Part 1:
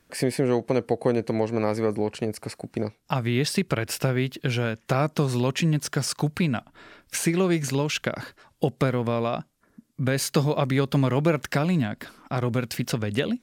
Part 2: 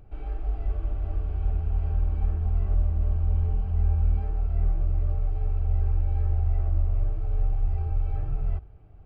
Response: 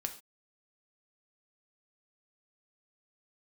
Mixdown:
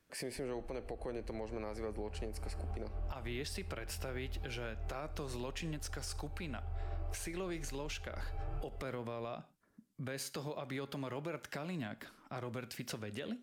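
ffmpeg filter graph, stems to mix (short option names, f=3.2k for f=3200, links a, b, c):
-filter_complex "[0:a]volume=-14.5dB,asplit=3[a][b][c];[b]volume=-5dB[d];[1:a]adelay=250,volume=2.5dB[e];[c]apad=whole_len=410531[f];[e][f]sidechaincompress=threshold=-50dB:ratio=6:attack=29:release=521[g];[2:a]atrim=start_sample=2205[h];[d][h]afir=irnorm=-1:irlink=0[i];[a][g][i]amix=inputs=3:normalize=0,acrossover=split=310[j][k];[j]acompressor=threshold=-46dB:ratio=2[l];[l][k]amix=inputs=2:normalize=0,alimiter=level_in=7.5dB:limit=-24dB:level=0:latency=1:release=121,volume=-7.5dB"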